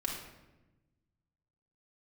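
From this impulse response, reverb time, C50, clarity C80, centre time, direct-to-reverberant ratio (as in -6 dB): 1.1 s, 3.0 dB, 6.0 dB, 44 ms, -2.5 dB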